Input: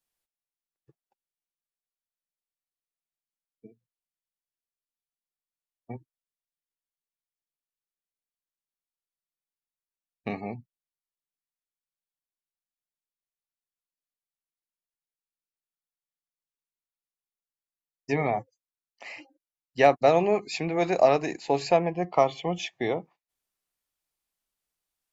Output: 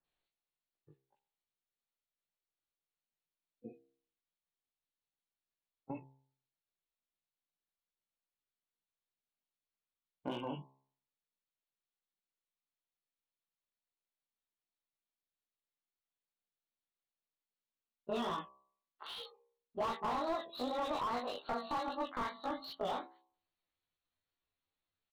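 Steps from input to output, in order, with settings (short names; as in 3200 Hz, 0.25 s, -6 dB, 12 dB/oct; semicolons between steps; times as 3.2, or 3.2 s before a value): gliding pitch shift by +10 st starting unshifted; brick-wall FIR low-pass 4500 Hz; bands offset in time lows, highs 40 ms, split 1800 Hz; chorus 2.5 Hz, delay 16.5 ms, depth 4.4 ms; compressor 2:1, threshold -46 dBFS, peak gain reduction 15 dB; de-hum 67.19 Hz, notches 17; slew limiter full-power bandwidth 12 Hz; gain +5 dB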